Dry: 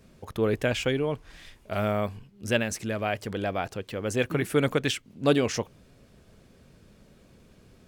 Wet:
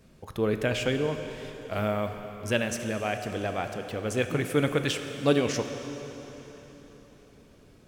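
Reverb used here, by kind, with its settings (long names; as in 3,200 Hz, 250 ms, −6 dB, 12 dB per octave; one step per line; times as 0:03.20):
dense smooth reverb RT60 4.2 s, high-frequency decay 0.9×, DRR 6.5 dB
level −1.5 dB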